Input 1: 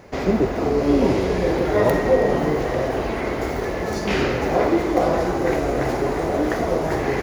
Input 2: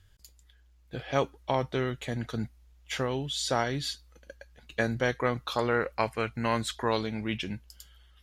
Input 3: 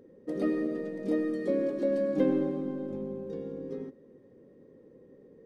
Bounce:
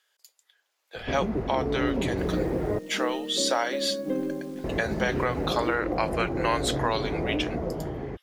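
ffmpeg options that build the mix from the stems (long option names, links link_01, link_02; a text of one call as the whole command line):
ffmpeg -i stem1.wav -i stem2.wav -i stem3.wav -filter_complex "[0:a]aemphasis=mode=reproduction:type=riaa,acrossover=split=110|790[link_01][link_02][link_03];[link_01]acompressor=threshold=-32dB:ratio=4[link_04];[link_02]acompressor=threshold=-18dB:ratio=4[link_05];[link_03]acompressor=threshold=-34dB:ratio=4[link_06];[link_04][link_05][link_06]amix=inputs=3:normalize=0,adelay=950,volume=-14dB,asplit=3[link_07][link_08][link_09];[link_07]atrim=end=2.79,asetpts=PTS-STARTPTS,afade=type=out:start_time=2.786:duration=0.004:curve=hsin[link_10];[link_08]atrim=start=2.79:end=4.64,asetpts=PTS-STARTPTS,volume=0[link_11];[link_09]atrim=start=4.64,asetpts=PTS-STARTPTS,afade=type=in:duration=0.004:curve=hsin[link_12];[link_10][link_11][link_12]concat=n=3:v=0:a=1[link_13];[1:a]highpass=frequency=510:width=0.5412,highpass=frequency=510:width=1.3066,volume=-0.5dB[link_14];[2:a]acrusher=bits=9:dc=4:mix=0:aa=0.000001,adelay=1900,volume=-9dB[link_15];[link_13][link_14][link_15]amix=inputs=3:normalize=0,dynaudnorm=framelen=120:gausssize=11:maxgain=6dB,alimiter=limit=-13.5dB:level=0:latency=1:release=136" out.wav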